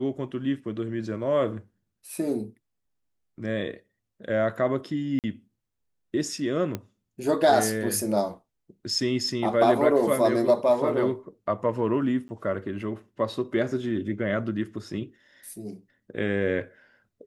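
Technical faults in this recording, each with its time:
5.19–5.24 s: dropout 48 ms
6.75 s: pop -16 dBFS
12.28–12.29 s: dropout 10 ms

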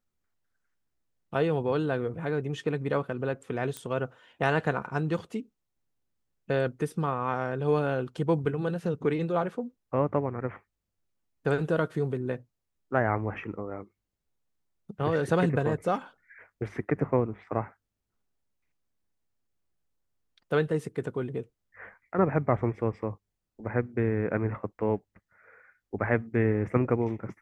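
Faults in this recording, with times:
3.77 s: pop -20 dBFS

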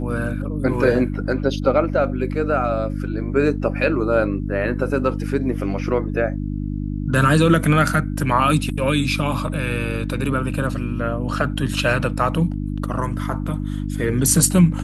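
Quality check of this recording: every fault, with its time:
hum 50 Hz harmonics 6 -25 dBFS

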